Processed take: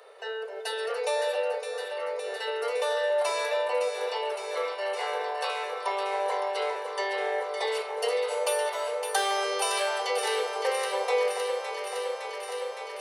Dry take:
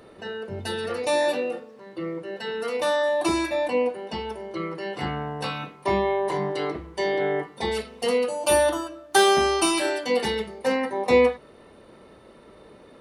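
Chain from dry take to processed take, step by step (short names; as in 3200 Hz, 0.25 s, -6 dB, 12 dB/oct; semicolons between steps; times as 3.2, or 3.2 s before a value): steep high-pass 420 Hz 96 dB/oct; compressor 2.5:1, threshold -28 dBFS, peak gain reduction 9.5 dB; echo with dull and thin repeats by turns 0.281 s, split 1200 Hz, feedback 89%, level -6 dB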